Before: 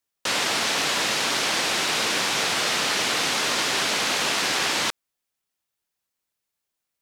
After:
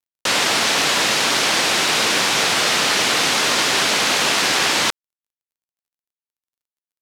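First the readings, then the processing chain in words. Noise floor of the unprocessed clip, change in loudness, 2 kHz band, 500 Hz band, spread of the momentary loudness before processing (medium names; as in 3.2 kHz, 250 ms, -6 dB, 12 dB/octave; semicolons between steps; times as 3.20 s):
-83 dBFS, +6.0 dB, +6.0 dB, +6.0 dB, 1 LU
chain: bit crusher 12-bit; trim +6 dB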